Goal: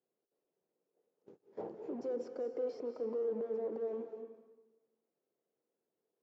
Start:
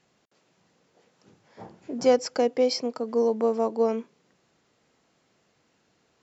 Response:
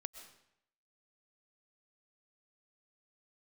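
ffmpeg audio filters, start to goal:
-filter_complex "[0:a]aemphasis=mode=production:type=50fm,agate=range=-19dB:threshold=-56dB:ratio=16:detection=peak,acontrast=56,alimiter=level_in=5dB:limit=-24dB:level=0:latency=1:release=75,volume=-5dB,aresample=16000,volume=35dB,asoftclip=hard,volume=-35dB,aresample=44100,aeval=exprs='0.0316*(cos(1*acos(clip(val(0)/0.0316,-1,1)))-cos(1*PI/2))+0.00178*(cos(7*acos(clip(val(0)/0.0316,-1,1)))-cos(7*PI/2))':c=same,bandpass=f=430:t=q:w=2.4:csg=0[a];[1:a]atrim=start_sample=2205,asetrate=29106,aresample=44100[b];[a][b]afir=irnorm=-1:irlink=0,volume=5.5dB"

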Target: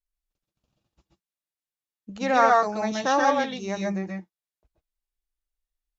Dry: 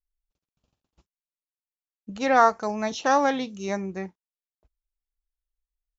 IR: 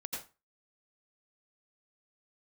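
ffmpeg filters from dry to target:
-filter_complex "[1:a]atrim=start_sample=2205,afade=t=out:st=0.14:d=0.01,atrim=end_sample=6615,asetrate=29106,aresample=44100[a];[0:a][a]afir=irnorm=-1:irlink=0"

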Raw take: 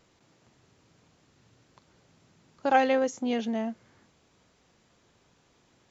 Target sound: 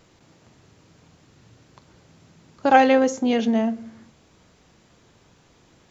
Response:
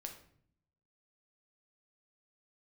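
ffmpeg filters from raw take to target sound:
-filter_complex "[0:a]asplit=2[a][b];[1:a]atrim=start_sample=2205,lowshelf=f=370:g=10[c];[b][c]afir=irnorm=-1:irlink=0,volume=-6dB[d];[a][d]amix=inputs=2:normalize=0,volume=5dB"

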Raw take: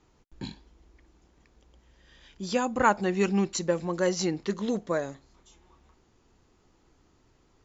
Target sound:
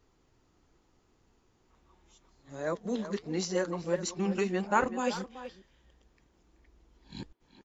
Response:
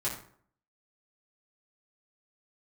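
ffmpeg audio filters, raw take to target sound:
-filter_complex "[0:a]areverse,flanger=delay=4.1:depth=4.6:regen=-76:speed=1.5:shape=triangular,asplit=2[a][b];[b]adelay=380,highpass=300,lowpass=3.4k,asoftclip=type=hard:threshold=-22.5dB,volume=-11dB[c];[a][c]amix=inputs=2:normalize=0"

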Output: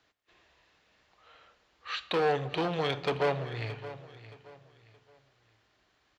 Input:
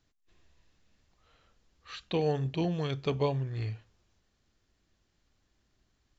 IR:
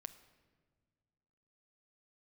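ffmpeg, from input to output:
-filter_complex "[0:a]volume=30.5dB,asoftclip=hard,volume=-30.5dB,highpass=51,acrossover=split=420 4100:gain=0.178 1 0.224[a][b][c];[a][b][c]amix=inputs=3:normalize=0,aecho=1:1:622|1244|1866:0.178|0.0569|0.0182,asplit=2[d][e];[1:a]atrim=start_sample=2205[f];[e][f]afir=irnorm=-1:irlink=0,volume=11dB[g];[d][g]amix=inputs=2:normalize=0,volume=1dB"

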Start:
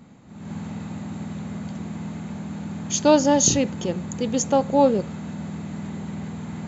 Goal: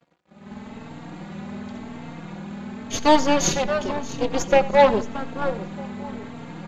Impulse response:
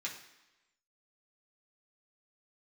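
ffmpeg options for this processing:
-filter_complex "[0:a]asplit=2[a][b];[b]adelay=626,lowpass=f=3k:p=1,volume=-8.5dB,asplit=2[c][d];[d]adelay=626,lowpass=f=3k:p=1,volume=0.25,asplit=2[e][f];[f]adelay=626,lowpass=f=3k:p=1,volume=0.25[g];[a][c][e][g]amix=inputs=4:normalize=0,asplit=2[h][i];[1:a]atrim=start_sample=2205[j];[i][j]afir=irnorm=-1:irlink=0,volume=-17dB[k];[h][k]amix=inputs=2:normalize=0,aeval=exprs='sgn(val(0))*max(abs(val(0))-0.00531,0)':c=same,highpass=f=250:p=1,aeval=exprs='0.531*(cos(1*acos(clip(val(0)/0.531,-1,1)))-cos(1*PI/2))+0.0531*(cos(3*acos(clip(val(0)/0.531,-1,1)))-cos(3*PI/2))+0.0596*(cos(8*acos(clip(val(0)/0.531,-1,1)))-cos(8*PI/2))':c=same,dynaudnorm=f=130:g=11:m=3dB,lowpass=4.5k,asplit=2[l][m];[m]aecho=0:1:88:0.119[n];[l][n]amix=inputs=2:normalize=0,asplit=2[o][p];[p]adelay=3.8,afreqshift=0.92[q];[o][q]amix=inputs=2:normalize=1,volume=4.5dB"

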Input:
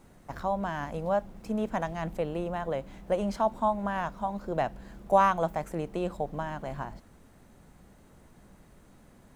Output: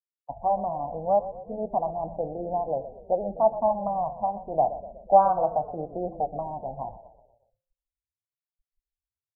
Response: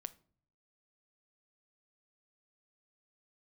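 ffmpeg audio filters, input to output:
-filter_complex "[0:a]lowpass=f=740:t=q:w=4.9,afftfilt=real='re*gte(hypot(re,im),0.0355)':imag='im*gte(hypot(re,im),0.0355)':win_size=1024:overlap=0.75,flanger=delay=5:depth=3.4:regen=-65:speed=0.82:shape=triangular,bandreject=f=168.7:t=h:w=4,bandreject=f=337.4:t=h:w=4,bandreject=f=506.1:t=h:w=4,bandreject=f=674.8:t=h:w=4,bandreject=f=843.5:t=h:w=4,bandreject=f=1.0122k:t=h:w=4,bandreject=f=1.1809k:t=h:w=4,bandreject=f=1.3496k:t=h:w=4,bandreject=f=1.5183k:t=h:w=4,bandreject=f=1.687k:t=h:w=4,bandreject=f=1.8557k:t=h:w=4,bandreject=f=2.0244k:t=h:w=4,bandreject=f=2.1931k:t=h:w=4,bandreject=f=2.3618k:t=h:w=4,bandreject=f=2.5305k:t=h:w=4,bandreject=f=2.6992k:t=h:w=4,bandreject=f=2.8679k:t=h:w=4,bandreject=f=3.0366k:t=h:w=4,bandreject=f=3.2053k:t=h:w=4,bandreject=f=3.374k:t=h:w=4,asplit=2[a][b];[b]asplit=5[c][d][e][f][g];[c]adelay=122,afreqshift=-30,volume=-14dB[h];[d]adelay=244,afreqshift=-60,volume=-19.8dB[i];[e]adelay=366,afreqshift=-90,volume=-25.7dB[j];[f]adelay=488,afreqshift=-120,volume=-31.5dB[k];[g]adelay=610,afreqshift=-150,volume=-37.4dB[l];[h][i][j][k][l]amix=inputs=5:normalize=0[m];[a][m]amix=inputs=2:normalize=0"

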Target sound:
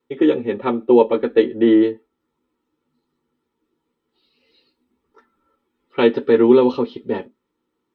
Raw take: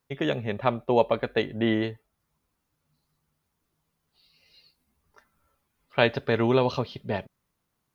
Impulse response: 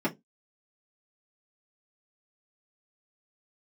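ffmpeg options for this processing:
-filter_complex "[0:a]equalizer=f=630:t=o:w=0.36:g=-13.5[a];[1:a]atrim=start_sample=2205,asetrate=66150,aresample=44100[b];[a][b]afir=irnorm=-1:irlink=0,volume=-3dB"

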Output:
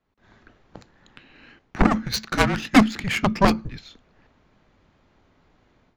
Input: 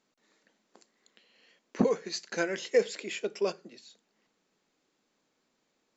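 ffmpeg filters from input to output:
-af "adynamicsmooth=sensitivity=7:basefreq=2.5k,aeval=exprs='0.237*(cos(1*acos(clip(val(0)/0.237,-1,1)))-cos(1*PI/2))+0.0668*(cos(4*acos(clip(val(0)/0.237,-1,1)))-cos(4*PI/2))+0.0841*(cos(7*acos(clip(val(0)/0.237,-1,1)))-cos(7*PI/2))':c=same,afreqshift=-220,dynaudnorm=f=140:g=3:m=16dB,volume=-1dB"

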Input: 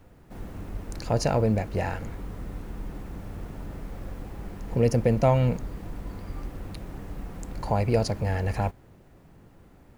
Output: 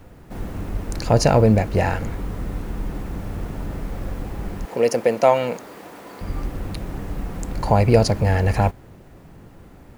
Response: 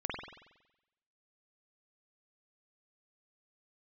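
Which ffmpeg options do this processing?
-filter_complex "[0:a]asettb=1/sr,asplit=3[a][b][c];[a]atrim=end=4.654[d];[b]atrim=start=4.65:end=6.21,asetpts=PTS-STARTPTS,afade=t=in:d=0.004:c=qsin,afade=t=out:st=1.556:d=0.004:c=qsin,highpass=430[e];[c]atrim=start=6.206[f];[d][e]acrossfade=d=0.004:c1=hsin:c2=qsin[g];[g][f]acrossfade=d=0.004:c1=qsin:c2=hsin,volume=8.5dB"

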